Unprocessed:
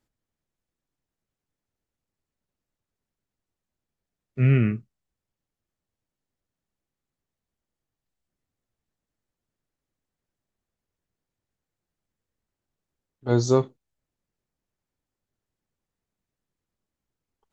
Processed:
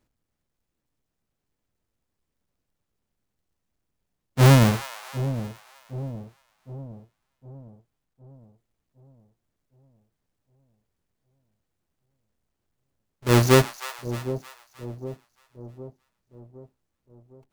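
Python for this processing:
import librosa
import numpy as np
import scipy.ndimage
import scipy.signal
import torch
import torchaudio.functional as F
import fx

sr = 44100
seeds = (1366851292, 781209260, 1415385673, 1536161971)

y = fx.halfwave_hold(x, sr)
y = fx.echo_split(y, sr, split_hz=760.0, low_ms=761, high_ms=311, feedback_pct=52, wet_db=-12.5)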